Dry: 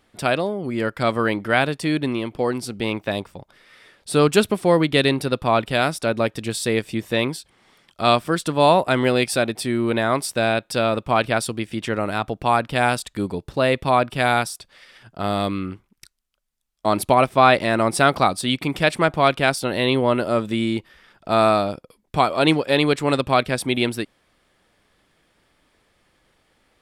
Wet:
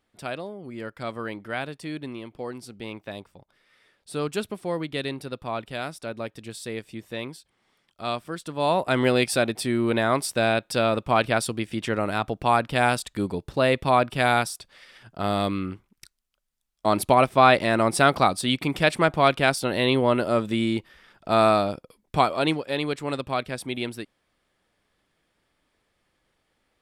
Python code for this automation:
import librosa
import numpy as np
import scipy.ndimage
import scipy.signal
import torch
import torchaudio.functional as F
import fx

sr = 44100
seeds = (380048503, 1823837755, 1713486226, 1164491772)

y = fx.gain(x, sr, db=fx.line((8.45, -12.0), (9.01, -2.0), (22.21, -2.0), (22.62, -9.0)))